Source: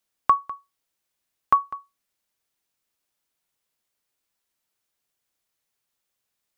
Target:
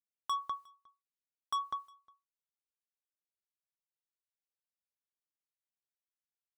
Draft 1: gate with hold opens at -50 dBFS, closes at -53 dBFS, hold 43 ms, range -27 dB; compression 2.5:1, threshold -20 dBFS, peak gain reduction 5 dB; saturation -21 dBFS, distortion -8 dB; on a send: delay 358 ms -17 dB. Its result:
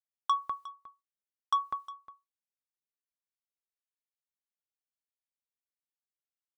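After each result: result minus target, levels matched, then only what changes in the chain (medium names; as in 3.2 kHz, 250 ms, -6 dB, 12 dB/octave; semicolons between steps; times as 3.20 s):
echo-to-direct +10 dB; saturation: distortion -5 dB
change: delay 358 ms -27 dB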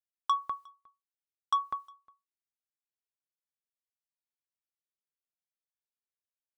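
saturation: distortion -5 dB
change: saturation -30 dBFS, distortion -3 dB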